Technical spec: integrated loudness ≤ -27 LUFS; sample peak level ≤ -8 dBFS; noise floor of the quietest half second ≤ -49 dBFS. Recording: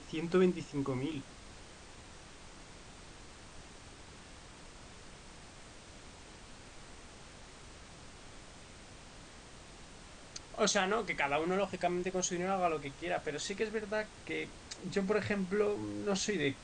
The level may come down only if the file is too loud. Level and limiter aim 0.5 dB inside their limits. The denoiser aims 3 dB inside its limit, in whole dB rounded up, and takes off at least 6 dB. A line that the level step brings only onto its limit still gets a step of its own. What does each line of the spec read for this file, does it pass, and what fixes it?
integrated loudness -34.5 LUFS: pass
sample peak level -15.5 dBFS: pass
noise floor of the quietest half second -53 dBFS: pass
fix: none needed

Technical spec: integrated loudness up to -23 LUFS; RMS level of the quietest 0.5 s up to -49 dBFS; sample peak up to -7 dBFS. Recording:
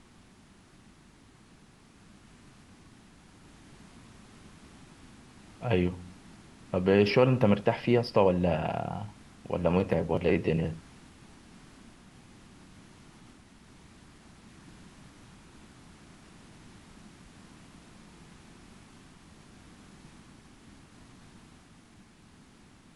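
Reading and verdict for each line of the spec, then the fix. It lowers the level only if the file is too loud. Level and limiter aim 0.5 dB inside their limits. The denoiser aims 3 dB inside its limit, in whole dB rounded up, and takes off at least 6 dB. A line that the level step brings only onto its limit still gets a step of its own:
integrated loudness -27.5 LUFS: pass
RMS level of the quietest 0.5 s -57 dBFS: pass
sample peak -8.5 dBFS: pass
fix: none needed

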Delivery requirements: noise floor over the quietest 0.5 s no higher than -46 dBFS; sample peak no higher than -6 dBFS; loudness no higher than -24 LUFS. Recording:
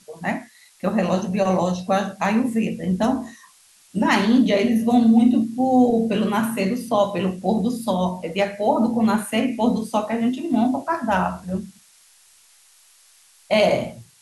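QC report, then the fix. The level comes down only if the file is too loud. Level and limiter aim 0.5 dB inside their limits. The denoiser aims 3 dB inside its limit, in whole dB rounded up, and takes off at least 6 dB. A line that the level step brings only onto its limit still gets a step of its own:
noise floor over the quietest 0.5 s -54 dBFS: pass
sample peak -5.0 dBFS: fail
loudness -21.0 LUFS: fail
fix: trim -3.5 dB

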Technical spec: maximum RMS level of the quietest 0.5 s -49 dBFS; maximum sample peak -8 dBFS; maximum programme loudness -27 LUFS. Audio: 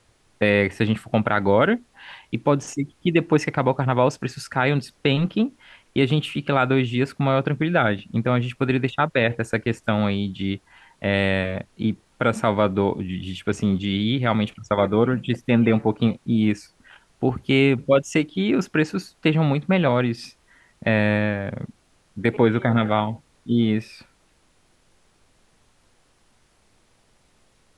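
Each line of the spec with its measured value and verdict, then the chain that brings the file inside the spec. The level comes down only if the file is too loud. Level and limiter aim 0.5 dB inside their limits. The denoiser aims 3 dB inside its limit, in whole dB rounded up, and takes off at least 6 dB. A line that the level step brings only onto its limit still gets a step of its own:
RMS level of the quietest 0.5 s -61 dBFS: pass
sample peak -5.5 dBFS: fail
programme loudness -22.0 LUFS: fail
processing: trim -5.5 dB

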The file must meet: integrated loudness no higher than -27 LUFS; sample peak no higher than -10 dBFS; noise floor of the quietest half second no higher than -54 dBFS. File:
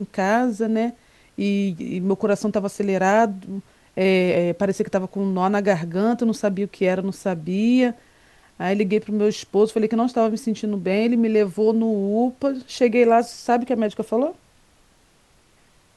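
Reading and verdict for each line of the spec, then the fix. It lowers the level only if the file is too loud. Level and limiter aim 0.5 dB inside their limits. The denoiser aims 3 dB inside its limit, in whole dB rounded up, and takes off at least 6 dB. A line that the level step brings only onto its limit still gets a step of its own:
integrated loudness -21.5 LUFS: fail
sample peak -5.5 dBFS: fail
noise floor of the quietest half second -58 dBFS: pass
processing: trim -6 dB

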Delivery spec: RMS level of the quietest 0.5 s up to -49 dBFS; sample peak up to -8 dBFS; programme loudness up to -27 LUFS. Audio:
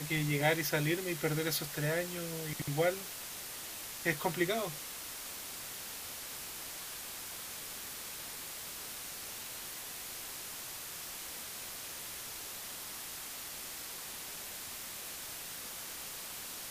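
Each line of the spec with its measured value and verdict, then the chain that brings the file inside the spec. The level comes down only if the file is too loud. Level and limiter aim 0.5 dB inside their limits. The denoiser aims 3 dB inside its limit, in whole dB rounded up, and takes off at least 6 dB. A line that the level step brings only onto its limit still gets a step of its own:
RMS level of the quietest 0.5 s -44 dBFS: fail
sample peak -15.0 dBFS: pass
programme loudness -37.5 LUFS: pass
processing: noise reduction 8 dB, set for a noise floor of -44 dBFS

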